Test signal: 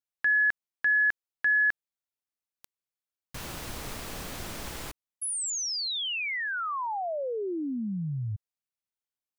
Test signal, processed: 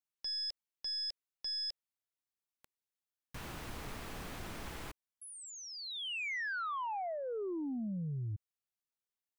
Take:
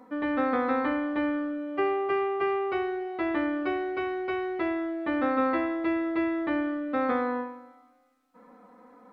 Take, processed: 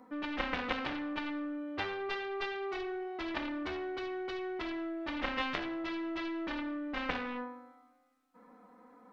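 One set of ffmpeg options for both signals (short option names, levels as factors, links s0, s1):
-filter_complex "[0:a]equalizer=f=560:t=o:w=0.36:g=-3,acrossover=split=3100[s0][s1];[s1]acompressor=threshold=0.00447:ratio=4:attack=1:release=60[s2];[s0][s2]amix=inputs=2:normalize=0,aeval=exprs='0.168*(cos(1*acos(clip(val(0)/0.168,-1,1)))-cos(1*PI/2))+0.0106*(cos(2*acos(clip(val(0)/0.168,-1,1)))-cos(2*PI/2))+0.0841*(cos(3*acos(clip(val(0)/0.168,-1,1)))-cos(3*PI/2))+0.00211*(cos(4*acos(clip(val(0)/0.168,-1,1)))-cos(4*PI/2))+0.00237*(cos(7*acos(clip(val(0)/0.168,-1,1)))-cos(7*PI/2))':c=same"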